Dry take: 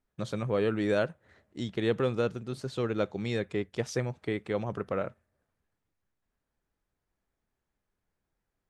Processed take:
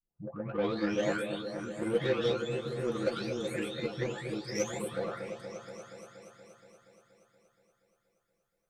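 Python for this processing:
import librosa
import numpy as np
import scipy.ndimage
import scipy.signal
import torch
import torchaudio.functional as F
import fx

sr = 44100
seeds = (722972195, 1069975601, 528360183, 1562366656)

y = fx.spec_delay(x, sr, highs='late', ms=935)
y = fx.high_shelf(y, sr, hz=3100.0, db=9.0)
y = fx.cheby_harmonics(y, sr, harmonics=(7,), levels_db=(-25,), full_scale_db=-17.5)
y = fx.doubler(y, sr, ms=13.0, db=-7.5)
y = fx.echo_opening(y, sr, ms=237, hz=750, octaves=1, feedback_pct=70, wet_db=-6)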